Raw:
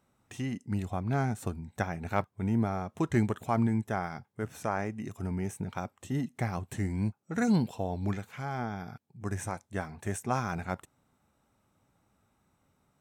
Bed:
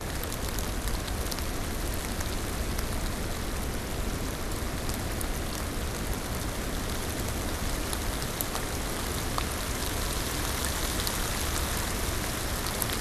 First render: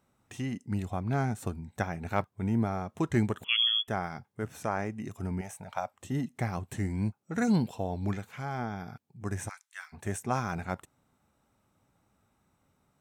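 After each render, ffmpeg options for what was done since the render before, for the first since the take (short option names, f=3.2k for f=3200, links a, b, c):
-filter_complex "[0:a]asettb=1/sr,asplit=3[a][b][c];[a]atrim=end=3.444[d];[b]atrim=start=3.44:end=3.88,asetpts=PTS-STARTPTS,afade=t=in:d=0.004:c=qsin,afade=t=out:st=0.436:d=0.004:c=qsin,lowpass=f=3k:t=q:w=0.5098,lowpass=f=3k:t=q:w=0.6013,lowpass=f=3k:t=q:w=0.9,lowpass=f=3k:t=q:w=2.563,afreqshift=-3500[e];[c]atrim=start=3.876[f];[d][e]acrossfade=d=0.004:c1=hsin:c2=qsin[g];[g][f]acrossfade=d=0.004:c1=qsin:c2=hsin,asettb=1/sr,asplit=3[h][i][j];[h]atrim=end=5.414[k];[i]atrim=start=5.41:end=5.94,asetpts=PTS-STARTPTS,afade=t=in:d=0.004:c=qsin,afade=t=out:st=0.526:d=0.004:c=qsin,lowshelf=f=480:t=q:w=3:g=-9.5[l];[j]atrim=start=5.936[m];[k][l]acrossfade=d=0.004:c1=hsin:c2=qsin[n];[n][m]acrossfade=d=0.004:c1=qsin:c2=hsin,asplit=3[o][p][q];[o]afade=t=out:st=9.48:d=0.02[r];[p]highpass=f=1.4k:w=0.5412,highpass=f=1.4k:w=1.3066,afade=t=in:st=9.48:d=0.02,afade=t=out:st=9.92:d=0.02[s];[q]afade=t=in:st=9.92:d=0.02[t];[r][s][t]amix=inputs=3:normalize=0"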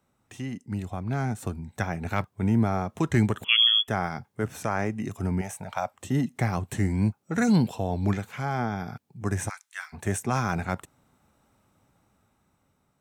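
-filter_complex "[0:a]acrossover=split=190|1300[a][b][c];[b]alimiter=level_in=2dB:limit=-24dB:level=0:latency=1,volume=-2dB[d];[a][d][c]amix=inputs=3:normalize=0,dynaudnorm=f=460:g=7:m=6.5dB"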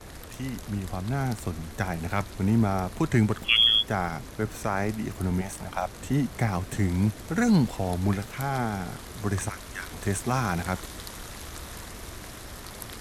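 -filter_complex "[1:a]volume=-10dB[a];[0:a][a]amix=inputs=2:normalize=0"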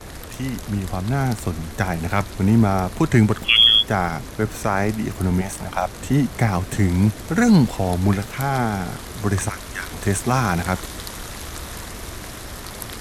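-af "volume=7dB,alimiter=limit=-2dB:level=0:latency=1"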